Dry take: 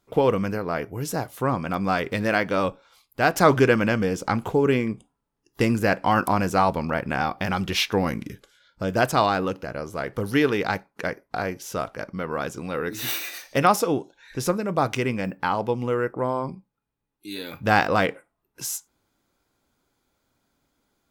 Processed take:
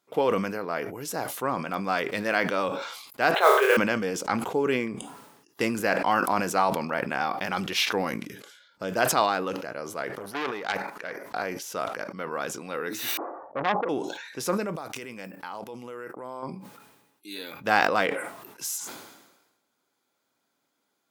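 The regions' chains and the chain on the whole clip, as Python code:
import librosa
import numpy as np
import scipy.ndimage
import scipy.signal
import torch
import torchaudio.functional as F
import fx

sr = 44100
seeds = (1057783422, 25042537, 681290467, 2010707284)

y = fx.chain(x, sr, fx.brickwall_bandpass(low_hz=360.0, high_hz=4200.0),
    fx.room_flutter(wall_m=4.9, rt60_s=0.44),
    fx.mod_noise(seeds[0], snr_db=22), at=(3.34, 3.77))
y = fx.chain(y, sr, fx.peak_eq(hz=1300.0, db=5.0, octaves=2.2),
    fx.level_steps(step_db=10),
    fx.transformer_sat(knee_hz=3100.0), at=(10.18, 11.23))
y = fx.chain(y, sr, fx.steep_lowpass(hz=1100.0, slope=48),
    fx.transformer_sat(knee_hz=1400.0), at=(13.17, 13.89))
y = fx.chain(y, sr, fx.high_shelf(hz=6000.0, db=10.5),
    fx.level_steps(step_db=17), at=(14.75, 16.43))
y = scipy.signal.sosfilt(scipy.signal.butter(2, 180.0, 'highpass', fs=sr, output='sos'), y)
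y = fx.low_shelf(y, sr, hz=340.0, db=-7.0)
y = fx.sustainer(y, sr, db_per_s=52.0)
y = y * 10.0 ** (-2.0 / 20.0)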